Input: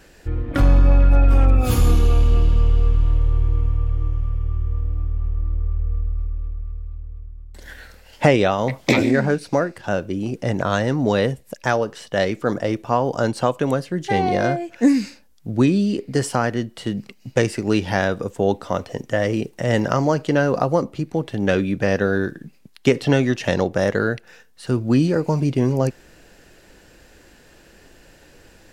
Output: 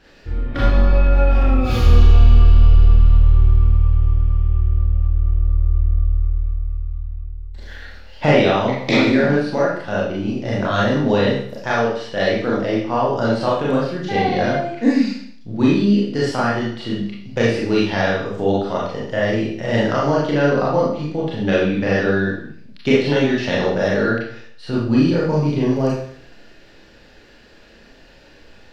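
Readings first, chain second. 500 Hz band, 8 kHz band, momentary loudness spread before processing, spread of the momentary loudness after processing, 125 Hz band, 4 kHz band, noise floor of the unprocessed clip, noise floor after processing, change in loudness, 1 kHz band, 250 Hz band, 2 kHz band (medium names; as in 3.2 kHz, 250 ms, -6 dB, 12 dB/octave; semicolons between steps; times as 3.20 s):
+2.0 dB, no reading, 10 LU, 11 LU, +2.5 dB, +4.0 dB, -51 dBFS, -47 dBFS, +2.5 dB, +2.0 dB, +2.0 dB, +2.5 dB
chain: resonant high shelf 6.3 kHz -13 dB, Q 1.5; Schroeder reverb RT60 0.59 s, combs from 27 ms, DRR -6 dB; trim -5 dB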